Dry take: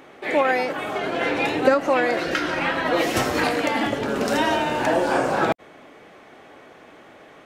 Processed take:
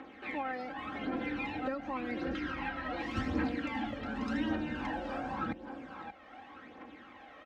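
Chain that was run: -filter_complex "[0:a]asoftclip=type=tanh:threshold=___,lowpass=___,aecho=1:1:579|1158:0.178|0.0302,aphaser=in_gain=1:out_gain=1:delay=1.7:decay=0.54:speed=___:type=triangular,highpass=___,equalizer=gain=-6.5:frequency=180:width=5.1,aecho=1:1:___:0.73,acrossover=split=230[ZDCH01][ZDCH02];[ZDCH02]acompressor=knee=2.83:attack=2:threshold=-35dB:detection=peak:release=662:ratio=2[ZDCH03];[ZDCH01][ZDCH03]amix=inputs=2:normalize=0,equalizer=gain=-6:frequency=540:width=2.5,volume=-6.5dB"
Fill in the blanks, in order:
-8.5dB, 3.4k, 0.88, 43, 3.8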